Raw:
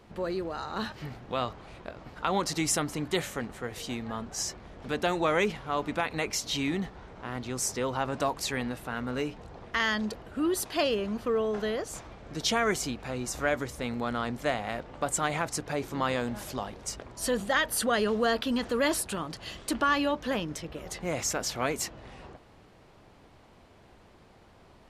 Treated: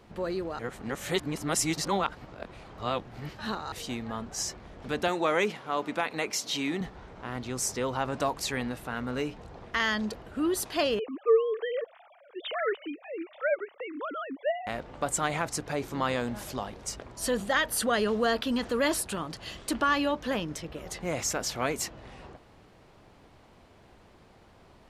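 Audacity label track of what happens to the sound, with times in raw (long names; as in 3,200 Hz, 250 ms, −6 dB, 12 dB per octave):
0.590000	3.720000	reverse
5.080000	6.810000	high-pass filter 200 Hz
10.990000	14.670000	three sine waves on the formant tracks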